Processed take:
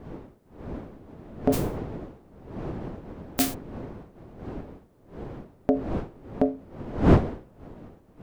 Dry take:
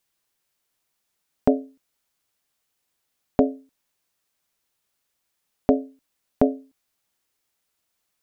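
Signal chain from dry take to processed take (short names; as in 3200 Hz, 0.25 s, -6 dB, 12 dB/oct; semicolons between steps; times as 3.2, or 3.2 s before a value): 1.52–3.53 spectral whitening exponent 0.1; wind noise 370 Hz -27 dBFS; soft clip -1 dBFS, distortion -18 dB; gain -3.5 dB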